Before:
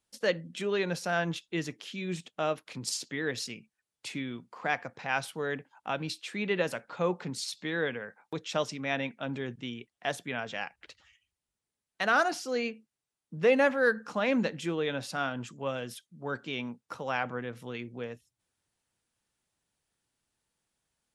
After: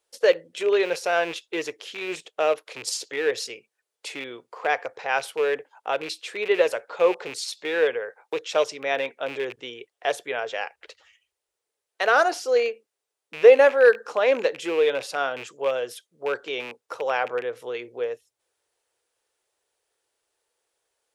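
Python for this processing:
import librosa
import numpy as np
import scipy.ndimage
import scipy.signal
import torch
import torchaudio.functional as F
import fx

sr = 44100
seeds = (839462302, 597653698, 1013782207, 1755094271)

y = fx.rattle_buzz(x, sr, strikes_db=-39.0, level_db=-29.0)
y = fx.low_shelf_res(y, sr, hz=300.0, db=-13.5, q=3.0)
y = y * librosa.db_to_amplitude(4.5)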